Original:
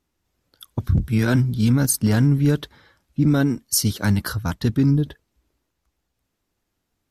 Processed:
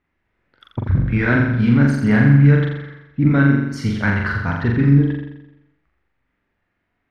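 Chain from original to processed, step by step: resonant low-pass 2 kHz, resonance Q 3; on a send: flutter echo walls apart 7.3 m, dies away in 0.89 s

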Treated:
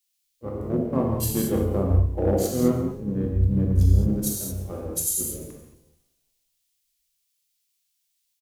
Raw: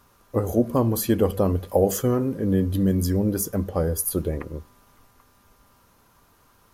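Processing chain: local Wiener filter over 25 samples; tempo 0.8×; gated-style reverb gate 250 ms flat, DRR -1 dB; overload inside the chain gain 10 dB; harmony voices -7 st -5 dB; added noise white -51 dBFS; frequency-shifting echo 173 ms, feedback 58%, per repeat -150 Hz, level -14.5 dB; harmonic-percussive split percussive -6 dB; three bands expanded up and down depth 100%; trim -6 dB

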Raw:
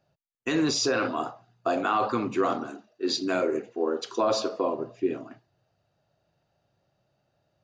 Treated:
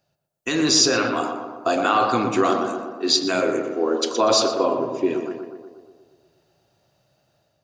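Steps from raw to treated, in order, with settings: treble shelf 3.4 kHz +11.5 dB; level rider gain up to 7 dB; tape echo 120 ms, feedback 68%, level -4.5 dB, low-pass 1.7 kHz; trim -2 dB

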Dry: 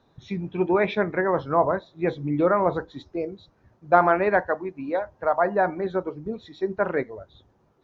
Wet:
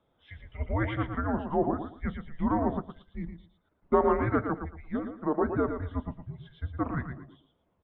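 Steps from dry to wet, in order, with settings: feedback delay 114 ms, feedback 24%, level -7.5 dB; 2.77–3.93 s: transient shaper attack 0 dB, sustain -5 dB; mistuned SSB -300 Hz 360–3500 Hz; trim -6 dB

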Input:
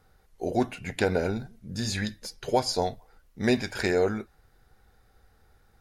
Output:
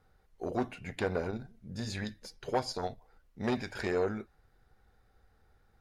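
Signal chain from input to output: treble shelf 5.1 kHz -8 dB; transformer saturation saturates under 670 Hz; trim -5 dB

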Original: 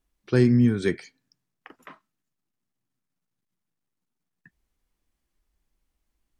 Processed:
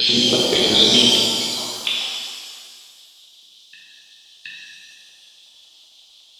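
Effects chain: slices played last to first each 175 ms, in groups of 3; resonant high shelf 2.4 kHz +11 dB, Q 3; LFO band-pass square 5.4 Hz 730–3500 Hz; level held to a coarse grid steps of 23 dB; peaking EQ 3.7 kHz +8 dB 1.2 oct; reverse echo 722 ms -10.5 dB; compression 3:1, threshold -49 dBFS, peak gain reduction 11 dB; loudness maximiser +36 dB; pitch-shifted reverb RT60 1.8 s, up +7 st, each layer -8 dB, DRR -5.5 dB; trim -5.5 dB

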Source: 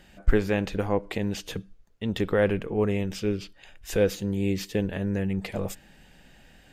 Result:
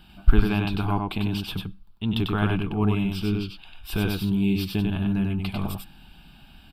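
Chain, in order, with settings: static phaser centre 1.9 kHz, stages 6; delay 96 ms -3.5 dB; trim +5 dB

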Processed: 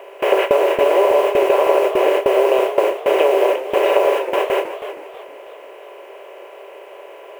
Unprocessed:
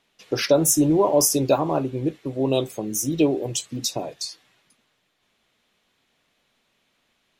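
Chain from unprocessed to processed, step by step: spectral levelling over time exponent 0.2; Chebyshev band-pass 390–3000 Hz, order 5; two-band feedback delay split 630 Hz, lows 419 ms, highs 117 ms, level -12 dB; compression 12:1, threshold -17 dBFS, peak gain reduction 9.5 dB; word length cut 8-bit, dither triangular; gate with hold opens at -12 dBFS; modulated delay 320 ms, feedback 35%, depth 157 cents, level -11.5 dB; trim +6.5 dB

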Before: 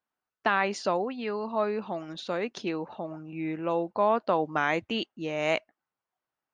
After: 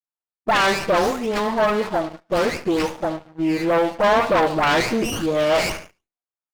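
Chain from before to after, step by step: delay that grows with frequency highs late, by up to 392 ms; high-pass 97 Hz 12 dB/octave; bass shelf 330 Hz -6 dB; gate -40 dBFS, range -11 dB; on a send: feedback delay 72 ms, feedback 45%, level -15 dB; on the sum: waveshaping leveller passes 3; sliding maximum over 9 samples; trim +4.5 dB

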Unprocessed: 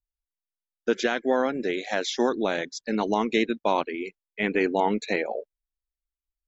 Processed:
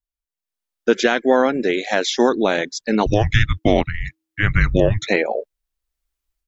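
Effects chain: level rider gain up to 14 dB; 3.06–5.07 s: frequency shift -320 Hz; trim -1.5 dB

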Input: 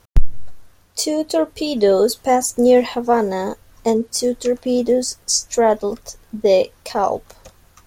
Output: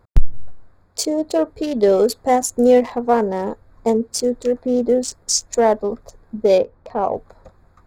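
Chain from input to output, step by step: local Wiener filter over 15 samples; 6.58–7.14 s: low-pass 1.1 kHz 6 dB/octave

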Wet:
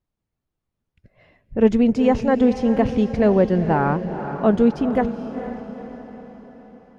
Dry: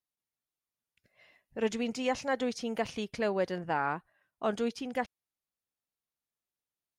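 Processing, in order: tilt EQ -4.5 dB/octave; echo that smears into a reverb 467 ms, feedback 52%, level -10 dB; trim +8.5 dB

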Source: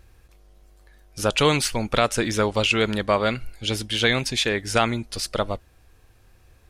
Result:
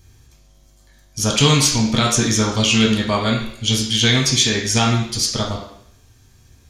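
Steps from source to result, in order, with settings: treble shelf 3.7 kHz +11 dB; reverberation RT60 0.70 s, pre-delay 3 ms, DRR -3 dB; trim -5.5 dB

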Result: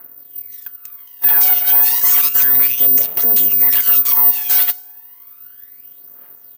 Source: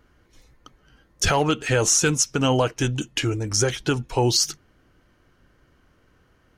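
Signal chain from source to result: comb 5.4 ms, depth 33%; bands offset in time lows, highs 190 ms, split 2 kHz; FDN reverb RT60 1.4 s, low-frequency decay 1×, high-frequency decay 0.35×, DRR 19 dB; full-wave rectifier; phaser 0.32 Hz, delay 1.4 ms, feedback 69%; careless resampling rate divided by 3×, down none, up zero stuff; peak limiter -7 dBFS, peak gain reduction 14.5 dB; high-pass 850 Hz 6 dB/octave; trim +7 dB

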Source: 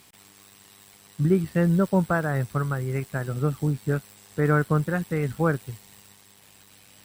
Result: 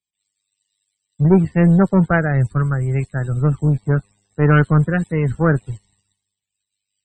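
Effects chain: low-pass 10 kHz 24 dB/octave; bass shelf 100 Hz +11 dB; waveshaping leveller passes 2; loudest bins only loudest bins 64; three bands expanded up and down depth 100%

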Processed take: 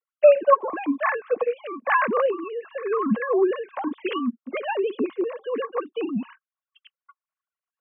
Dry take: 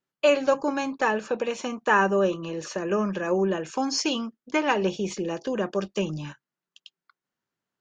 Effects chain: formants replaced by sine waves; small resonant body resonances 220/1100 Hz, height 13 dB, ringing for 35 ms

